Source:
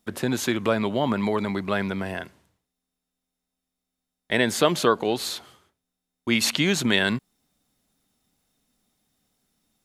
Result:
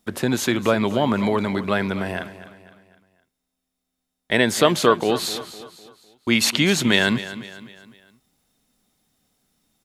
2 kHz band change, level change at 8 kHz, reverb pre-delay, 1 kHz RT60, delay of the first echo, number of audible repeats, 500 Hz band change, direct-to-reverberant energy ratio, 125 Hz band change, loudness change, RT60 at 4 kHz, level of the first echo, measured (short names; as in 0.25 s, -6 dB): +3.5 dB, +3.5 dB, none, none, 0.253 s, 3, +3.5 dB, none, +3.5 dB, +3.5 dB, none, -14.5 dB